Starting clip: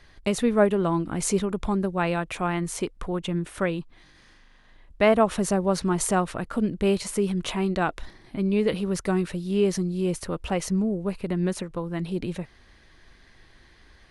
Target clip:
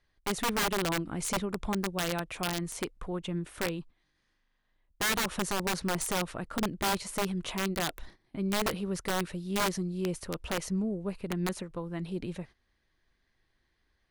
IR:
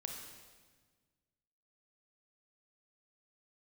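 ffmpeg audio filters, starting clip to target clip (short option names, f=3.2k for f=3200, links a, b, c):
-af "agate=range=-14dB:threshold=-41dB:ratio=16:detection=peak,aeval=exprs='(mod(6.68*val(0)+1,2)-1)/6.68':c=same,volume=-6.5dB"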